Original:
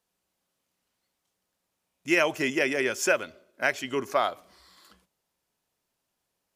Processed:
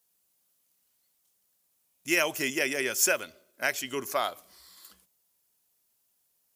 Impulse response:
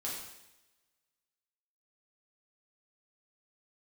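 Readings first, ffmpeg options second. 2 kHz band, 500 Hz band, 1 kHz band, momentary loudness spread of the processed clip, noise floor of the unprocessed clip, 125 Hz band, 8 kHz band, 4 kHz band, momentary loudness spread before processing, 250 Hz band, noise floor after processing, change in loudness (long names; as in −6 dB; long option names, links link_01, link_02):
−2.0 dB, −4.5 dB, −4.0 dB, 9 LU, −81 dBFS, −5.0 dB, +6.5 dB, +1.0 dB, 7 LU, −5.0 dB, −73 dBFS, −1.5 dB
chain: -af "aemphasis=mode=production:type=75fm,volume=-4dB"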